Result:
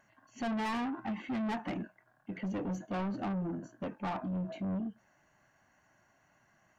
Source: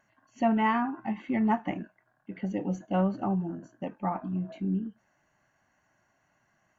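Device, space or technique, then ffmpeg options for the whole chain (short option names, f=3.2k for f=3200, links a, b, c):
saturation between pre-emphasis and de-emphasis: -af "highshelf=f=4.3k:g=6,asoftclip=type=tanh:threshold=-34dB,highshelf=f=4.3k:g=-6,volume=2dB"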